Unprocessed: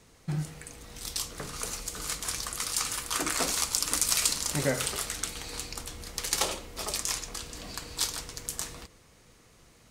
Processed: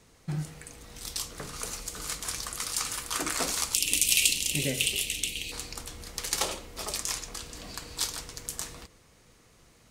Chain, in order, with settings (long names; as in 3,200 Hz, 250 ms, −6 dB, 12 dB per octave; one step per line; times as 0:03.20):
0:03.74–0:05.52: drawn EQ curve 390 Hz 0 dB, 1,400 Hz −24 dB, 2,700 Hz +15 dB, 4,700 Hz 0 dB, 12,000 Hz +5 dB
level −1 dB